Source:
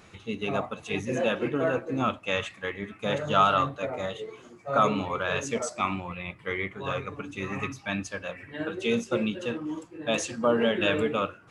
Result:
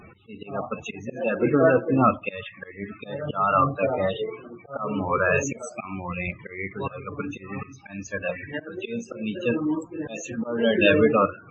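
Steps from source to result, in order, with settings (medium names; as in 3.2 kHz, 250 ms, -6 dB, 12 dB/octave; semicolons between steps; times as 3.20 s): slow attack 406 ms; loudest bins only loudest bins 32; trim +8.5 dB; AAC 32 kbps 24 kHz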